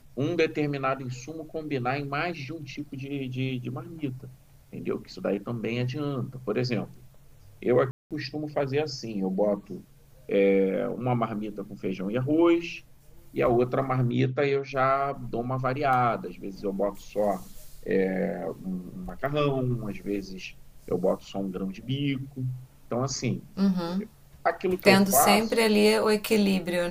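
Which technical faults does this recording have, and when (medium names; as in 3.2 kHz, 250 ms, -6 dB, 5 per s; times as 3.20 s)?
7.91–8.11 s: dropout 197 ms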